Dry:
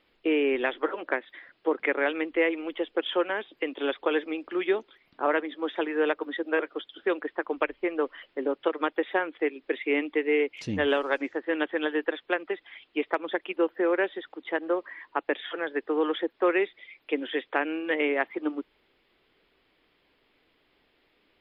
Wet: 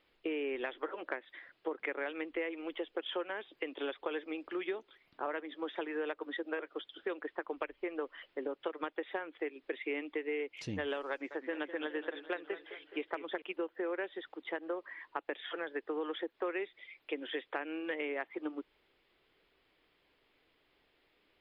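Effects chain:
parametric band 230 Hz −4 dB 0.62 octaves
downward compressor 4 to 1, threshold −30 dBFS, peak gain reduction 9.5 dB
0:11.10–0:13.42: feedback echo with a swinging delay time 209 ms, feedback 57%, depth 108 cents, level −12.5 dB
level −4.5 dB

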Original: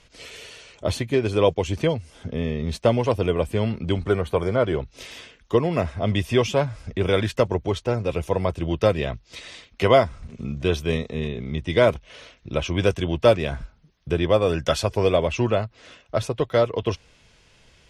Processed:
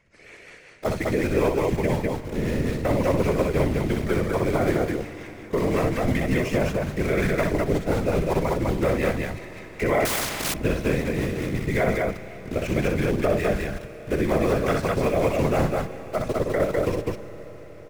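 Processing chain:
high shelf with overshoot 2,600 Hz −6.5 dB, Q 3
in parallel at −3 dB: bit reduction 5 bits
on the sum: rotating-speaker cabinet horn 5.5 Hz
random phases in short frames
brickwall limiter −10 dBFS, peak gain reduction 10 dB
loudspeakers that aren't time-aligned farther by 21 metres −5 dB, 70 metres −2 dB
on a send at −13 dB: convolution reverb RT60 5.7 s, pre-delay 33 ms
0:10.05–0:10.54: on the sum: every bin compressed towards the loudest bin 4 to 1
level −4 dB

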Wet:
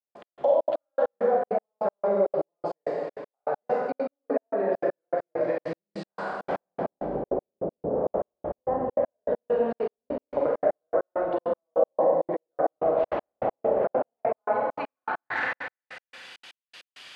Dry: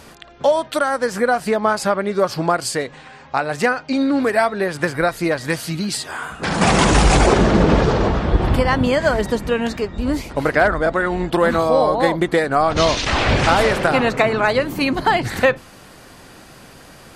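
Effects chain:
treble cut that deepens with the level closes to 510 Hz, closed at −10.5 dBFS
downward compressor, threshold −22 dBFS, peak gain reduction 12.5 dB
band-pass filter sweep 590 Hz → 3,000 Hz, 0:13.95–0:16.24
four-comb reverb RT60 1.8 s, combs from 31 ms, DRR −4 dB
gate pattern "..x..xxx.x." 199 BPM −60 dB
level +2 dB

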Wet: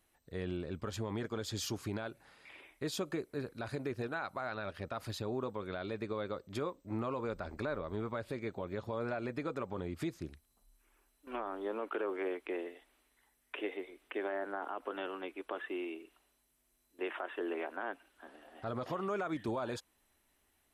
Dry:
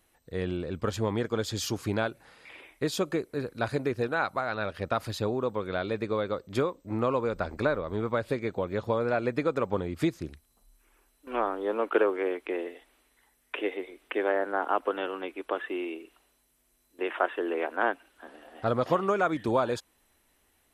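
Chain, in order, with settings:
notch filter 490 Hz, Q 12
brickwall limiter −21.5 dBFS, peak gain reduction 10.5 dB
level −6 dB

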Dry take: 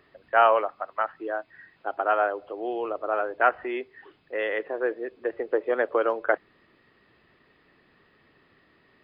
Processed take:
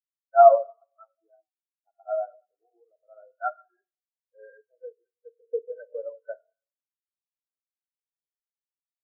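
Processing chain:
hearing-aid frequency compression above 1,500 Hz 4 to 1
notch filter 370 Hz, Q 12
four-comb reverb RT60 1.7 s, combs from 27 ms, DRR 3.5 dB
every bin expanded away from the loudest bin 4 to 1
level +3.5 dB

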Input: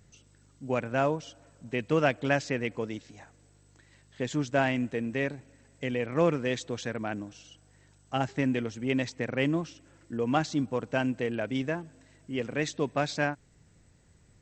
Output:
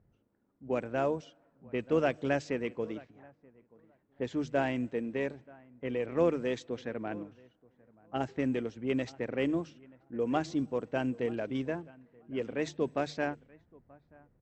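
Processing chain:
mains-hum notches 50/100/150 Hz
on a send: repeating echo 931 ms, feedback 21%, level −20.5 dB
on the sum: pitch-shifted copies added −12 semitones −17 dB
dynamic equaliser 400 Hz, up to +7 dB, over −41 dBFS, Q 0.88
low-pass that shuts in the quiet parts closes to 1,000 Hz, open at −19 dBFS
level −7.5 dB

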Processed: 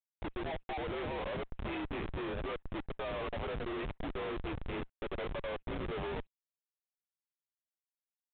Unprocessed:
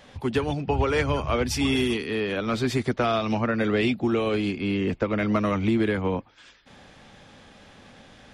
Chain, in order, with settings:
dynamic equaliser 1,500 Hz, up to +6 dB, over −43 dBFS, Q 0.95
flanger 0.74 Hz, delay 2.9 ms, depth 3.5 ms, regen +36%
amplitude tremolo 4 Hz, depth 71%
phaser with its sweep stopped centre 650 Hz, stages 4
single-sideband voice off tune −68 Hz 420–2,600 Hz
on a send: single-tap delay 339 ms −19 dB
on the sum: comparator with hysteresis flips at −41.5 dBFS
level +2.5 dB
G.726 40 kbit/s 8,000 Hz

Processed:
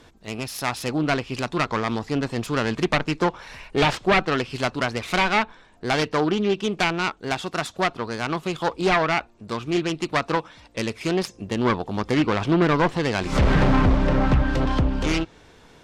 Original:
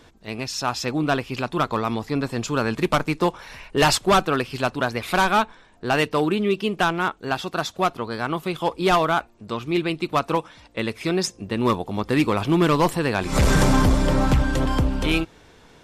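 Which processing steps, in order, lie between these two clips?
phase distortion by the signal itself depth 0.23 ms
treble cut that deepens with the level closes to 3,000 Hz, closed at −14.5 dBFS

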